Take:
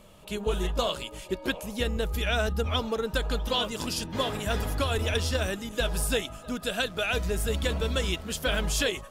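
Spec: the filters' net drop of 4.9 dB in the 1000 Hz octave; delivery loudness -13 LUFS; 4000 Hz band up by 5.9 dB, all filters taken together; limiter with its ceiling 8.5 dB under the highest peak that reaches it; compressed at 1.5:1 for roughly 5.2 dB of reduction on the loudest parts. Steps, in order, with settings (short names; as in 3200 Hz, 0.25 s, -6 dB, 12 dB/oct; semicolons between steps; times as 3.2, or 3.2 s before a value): bell 1000 Hz -7.5 dB; bell 4000 Hz +8 dB; compressor 1.5:1, threshold -35 dBFS; gain +21.5 dB; limiter -3 dBFS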